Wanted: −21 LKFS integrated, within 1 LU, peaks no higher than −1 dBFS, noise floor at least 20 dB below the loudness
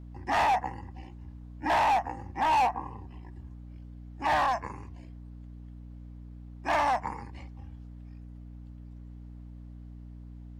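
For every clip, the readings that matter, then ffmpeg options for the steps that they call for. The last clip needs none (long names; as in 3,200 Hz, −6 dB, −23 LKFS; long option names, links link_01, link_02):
mains hum 60 Hz; hum harmonics up to 300 Hz; level of the hum −42 dBFS; integrated loudness −28.5 LKFS; sample peak −20.0 dBFS; target loudness −21.0 LKFS
→ -af "bandreject=frequency=60:width_type=h:width=6,bandreject=frequency=120:width_type=h:width=6,bandreject=frequency=180:width_type=h:width=6,bandreject=frequency=240:width_type=h:width=6,bandreject=frequency=300:width_type=h:width=6"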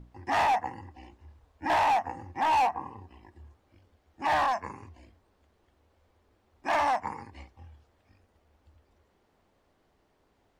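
mains hum none found; integrated loudness −28.0 LKFS; sample peak −19.5 dBFS; target loudness −21.0 LKFS
→ -af "volume=7dB"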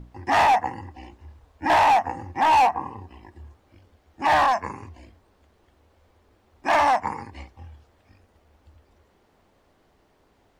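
integrated loudness −21.0 LKFS; sample peak −12.5 dBFS; background noise floor −63 dBFS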